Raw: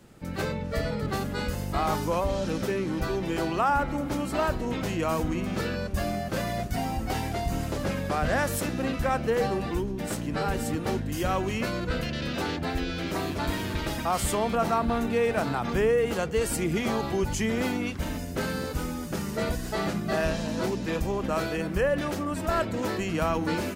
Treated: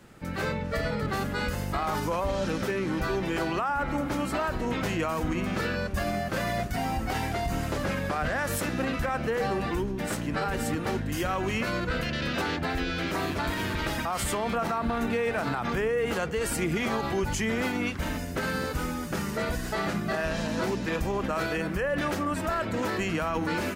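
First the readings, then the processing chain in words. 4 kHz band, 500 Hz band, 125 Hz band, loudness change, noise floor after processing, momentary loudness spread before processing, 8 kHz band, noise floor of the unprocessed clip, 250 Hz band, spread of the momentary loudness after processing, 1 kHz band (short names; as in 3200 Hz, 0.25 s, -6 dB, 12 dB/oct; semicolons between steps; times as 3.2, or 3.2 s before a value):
+0.5 dB, -2.0 dB, -1.5 dB, -0.5 dB, -33 dBFS, 5 LU, -1.0 dB, -34 dBFS, -1.0 dB, 2 LU, -0.5 dB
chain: bell 1600 Hz +5.5 dB 1.7 oct; limiter -19.5 dBFS, peak gain reduction 9 dB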